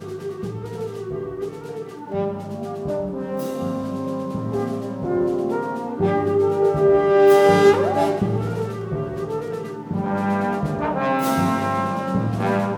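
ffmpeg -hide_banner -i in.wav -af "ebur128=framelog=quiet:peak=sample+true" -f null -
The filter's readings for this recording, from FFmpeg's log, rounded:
Integrated loudness:
  I:         -21.6 LUFS
  Threshold: -31.7 LUFS
Loudness range:
  LRA:        10.4 LU
  Threshold: -41.2 LUFS
  LRA low:   -27.9 LUFS
  LRA high:  -17.5 LUFS
Sample peak:
  Peak:       -2.5 dBFS
True peak:
  Peak:       -2.4 dBFS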